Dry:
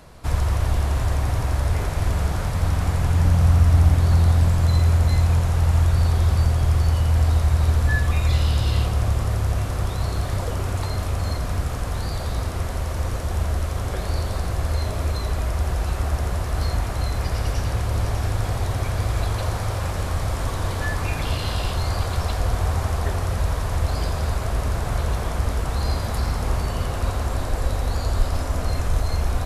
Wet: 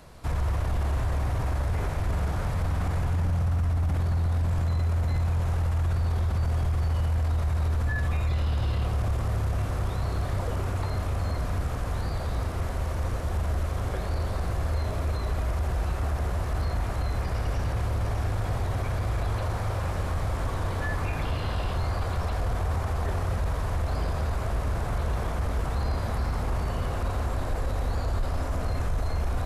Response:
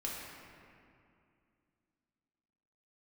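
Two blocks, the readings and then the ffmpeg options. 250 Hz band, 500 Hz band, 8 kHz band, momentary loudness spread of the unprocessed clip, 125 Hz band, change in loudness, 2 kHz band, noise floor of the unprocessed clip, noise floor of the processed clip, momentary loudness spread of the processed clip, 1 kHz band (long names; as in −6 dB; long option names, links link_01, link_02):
−5.0 dB, −4.0 dB, −10.5 dB, 8 LU, −6.0 dB, −6.0 dB, −5.5 dB, −27 dBFS, −30 dBFS, 4 LU, −4.0 dB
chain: -filter_complex "[0:a]acrossover=split=2600[link_01][link_02];[link_02]acompressor=threshold=-44dB:ratio=4:attack=1:release=60[link_03];[link_01][link_03]amix=inputs=2:normalize=0,alimiter=limit=-17dB:level=0:latency=1:release=10,volume=-3dB"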